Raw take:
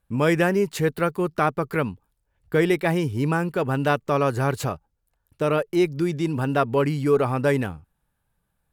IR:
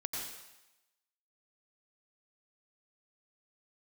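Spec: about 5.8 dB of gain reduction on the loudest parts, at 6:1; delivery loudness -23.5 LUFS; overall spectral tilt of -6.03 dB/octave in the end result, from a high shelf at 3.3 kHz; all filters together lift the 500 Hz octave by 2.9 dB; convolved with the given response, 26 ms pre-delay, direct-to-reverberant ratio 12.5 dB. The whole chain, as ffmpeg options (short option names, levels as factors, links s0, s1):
-filter_complex "[0:a]equalizer=f=500:t=o:g=3.5,highshelf=f=3300:g=4,acompressor=threshold=0.112:ratio=6,asplit=2[s0][s1];[1:a]atrim=start_sample=2205,adelay=26[s2];[s1][s2]afir=irnorm=-1:irlink=0,volume=0.188[s3];[s0][s3]amix=inputs=2:normalize=0,volume=1.19"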